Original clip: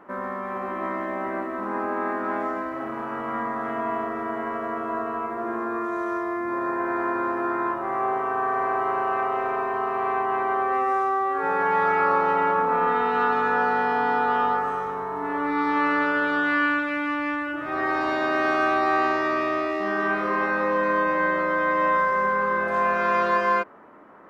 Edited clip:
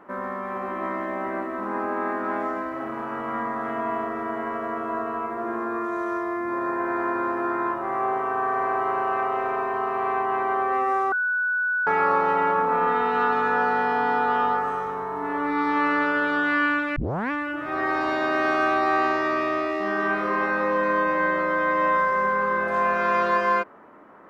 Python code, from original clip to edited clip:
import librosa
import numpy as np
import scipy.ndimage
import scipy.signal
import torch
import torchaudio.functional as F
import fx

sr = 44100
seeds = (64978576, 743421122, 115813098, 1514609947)

y = fx.edit(x, sr, fx.bleep(start_s=11.12, length_s=0.75, hz=1480.0, db=-21.0),
    fx.tape_start(start_s=16.96, length_s=0.35), tone=tone)